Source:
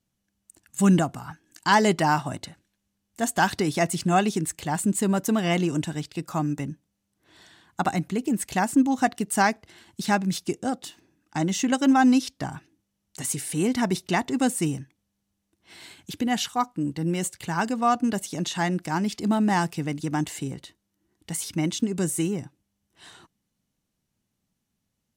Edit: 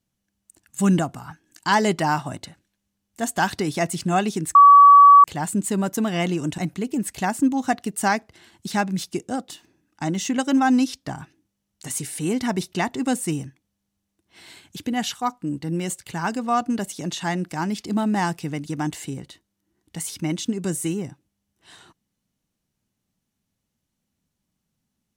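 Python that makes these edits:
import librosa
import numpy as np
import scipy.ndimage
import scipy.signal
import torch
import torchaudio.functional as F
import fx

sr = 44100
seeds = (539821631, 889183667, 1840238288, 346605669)

y = fx.edit(x, sr, fx.insert_tone(at_s=4.55, length_s=0.69, hz=1140.0, db=-6.0),
    fx.cut(start_s=5.89, length_s=2.03), tone=tone)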